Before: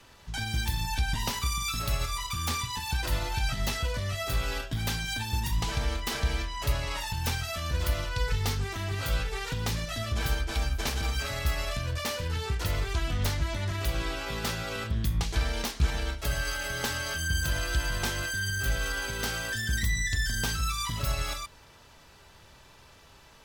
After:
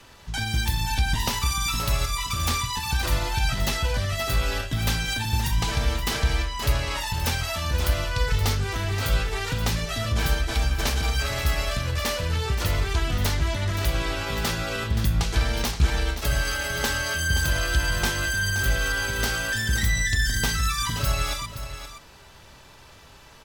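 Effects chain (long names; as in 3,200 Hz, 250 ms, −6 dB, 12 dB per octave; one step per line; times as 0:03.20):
single-tap delay 524 ms −10.5 dB
level +5 dB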